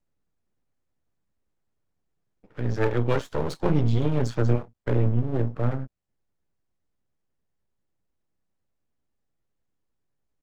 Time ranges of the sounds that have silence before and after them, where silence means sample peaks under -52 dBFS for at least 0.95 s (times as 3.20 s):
2.44–5.87 s